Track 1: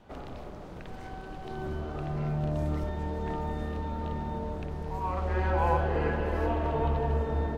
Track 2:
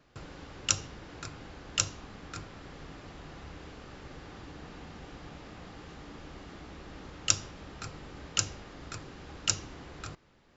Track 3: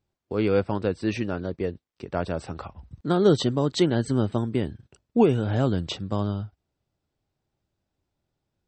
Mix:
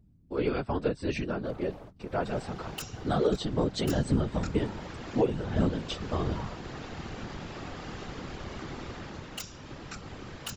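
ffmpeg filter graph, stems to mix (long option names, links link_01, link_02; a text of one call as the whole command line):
ffmpeg -i stem1.wav -i stem2.wav -i stem3.wav -filter_complex "[0:a]adelay=1350,volume=-1.5dB[link_01];[1:a]dynaudnorm=framelen=360:gausssize=3:maxgain=14dB,adelay=2100,volume=3dB[link_02];[2:a]aeval=exprs='val(0)+0.00282*(sin(2*PI*50*n/s)+sin(2*PI*2*50*n/s)/2+sin(2*PI*3*50*n/s)/3+sin(2*PI*4*50*n/s)/4+sin(2*PI*5*50*n/s)/5)':channel_layout=same,aecho=1:1:7.1:0.95,volume=-3dB,asplit=2[link_03][link_04];[link_04]apad=whole_len=393545[link_05];[link_01][link_05]sidechaingate=range=-33dB:threshold=-48dB:ratio=16:detection=peak[link_06];[link_06][link_02]amix=inputs=2:normalize=0,aeval=exprs='0.178*(abs(mod(val(0)/0.178+3,4)-2)-1)':channel_layout=same,acompressor=threshold=-35dB:ratio=4,volume=0dB[link_07];[link_03][link_07]amix=inputs=2:normalize=0,dynaudnorm=framelen=190:gausssize=5:maxgain=3.5dB,afftfilt=real='hypot(re,im)*cos(2*PI*random(0))':imag='hypot(re,im)*sin(2*PI*random(1))':win_size=512:overlap=0.75,alimiter=limit=-15dB:level=0:latency=1:release=479" out.wav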